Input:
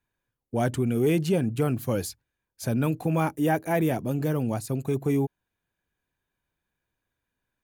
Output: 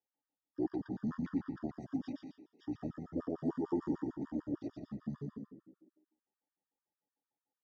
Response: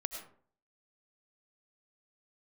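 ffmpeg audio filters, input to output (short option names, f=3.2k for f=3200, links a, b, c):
-filter_complex "[0:a]aemphasis=mode=reproduction:type=75kf,bandreject=f=4.3k:w=7.3,asplit=4[a][b][c][d];[b]adelay=176,afreqshift=110,volume=-19dB[e];[c]adelay=352,afreqshift=220,volume=-27.4dB[f];[d]adelay=528,afreqshift=330,volume=-35.8dB[g];[a][e][f][g]amix=inputs=4:normalize=0,asetrate=22696,aresample=44100,atempo=1.94306,highpass=250,equalizer=f=290:t=q:w=4:g=9,equalizer=f=1.2k:t=q:w=4:g=-3,equalizer=f=1.8k:t=q:w=4:g=5,equalizer=f=2.7k:t=q:w=4:g=-9,equalizer=f=4.2k:t=q:w=4:g=-6,equalizer=f=7.4k:t=q:w=4:g=-10,lowpass=f=7.4k:w=0.5412,lowpass=f=7.4k:w=1.3066,asplit=2[h][i];[1:a]atrim=start_sample=2205,adelay=119[j];[i][j]afir=irnorm=-1:irlink=0,volume=-1.5dB[k];[h][k]amix=inputs=2:normalize=0,afftfilt=real='re*gt(sin(2*PI*6.7*pts/sr)*(1-2*mod(floor(b*sr/1024/940),2)),0)':imag='im*gt(sin(2*PI*6.7*pts/sr)*(1-2*mod(floor(b*sr/1024/940),2)),0)':win_size=1024:overlap=0.75,volume=-8.5dB"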